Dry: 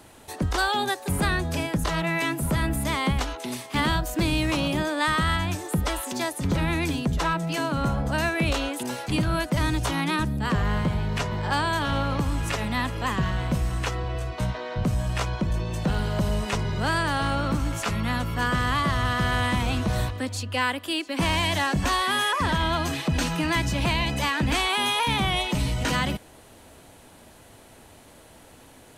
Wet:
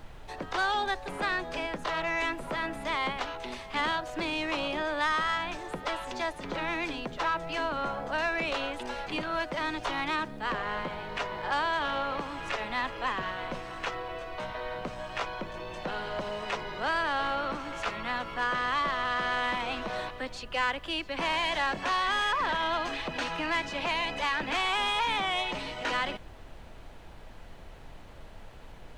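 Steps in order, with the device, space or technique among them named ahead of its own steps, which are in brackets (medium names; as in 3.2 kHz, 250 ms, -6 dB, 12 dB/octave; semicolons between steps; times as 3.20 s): aircraft cabin announcement (band-pass 450–3500 Hz; saturation -20.5 dBFS, distortion -19 dB; brown noise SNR 14 dB); trim -1 dB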